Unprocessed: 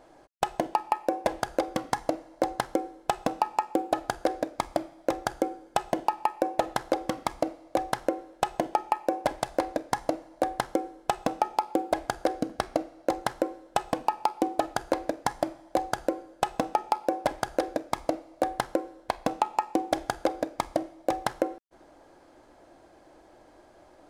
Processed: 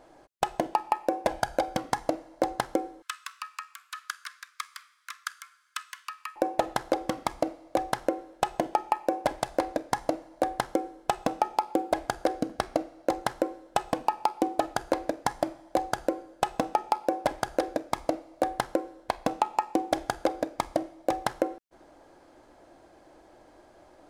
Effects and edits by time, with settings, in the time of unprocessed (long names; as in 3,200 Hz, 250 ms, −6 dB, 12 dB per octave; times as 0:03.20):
0:01.30–0:01.78: comb filter 1.3 ms, depth 49%
0:03.02–0:06.36: Butterworth high-pass 1,100 Hz 96 dB per octave